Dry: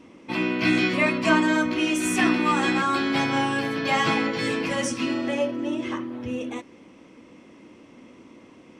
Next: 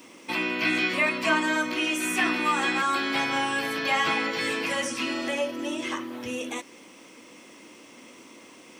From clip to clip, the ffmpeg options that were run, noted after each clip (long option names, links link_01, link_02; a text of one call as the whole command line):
ffmpeg -i in.wav -filter_complex "[0:a]acrossover=split=3300[link_01][link_02];[link_02]acompressor=threshold=-47dB:ratio=4:attack=1:release=60[link_03];[link_01][link_03]amix=inputs=2:normalize=0,aemphasis=mode=production:type=riaa,asplit=2[link_04][link_05];[link_05]acompressor=threshold=-32dB:ratio=6,volume=2.5dB[link_06];[link_04][link_06]amix=inputs=2:normalize=0,volume=-4.5dB" out.wav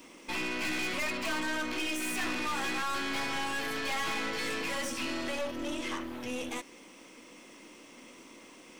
ffmpeg -i in.wav -af "aeval=exprs='(tanh(35.5*val(0)+0.65)-tanh(0.65))/35.5':channel_layout=same" out.wav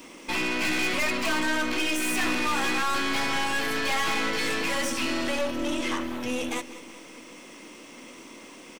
ffmpeg -i in.wav -af "aecho=1:1:191|382|573|764|955:0.15|0.0868|0.0503|0.0292|0.0169,volume=6.5dB" out.wav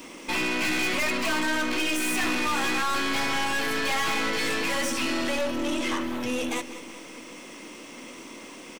ffmpeg -i in.wav -af "asoftclip=type=tanh:threshold=-23dB,volume=3dB" out.wav